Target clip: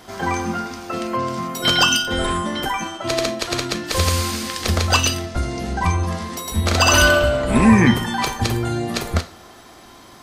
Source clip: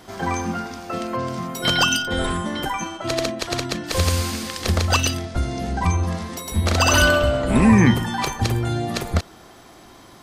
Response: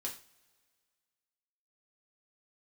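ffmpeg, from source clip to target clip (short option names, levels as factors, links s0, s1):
-filter_complex "[0:a]asplit=2[s0][s1];[1:a]atrim=start_sample=2205,lowshelf=f=370:g=-10[s2];[s1][s2]afir=irnorm=-1:irlink=0,volume=0.944[s3];[s0][s3]amix=inputs=2:normalize=0,volume=0.841"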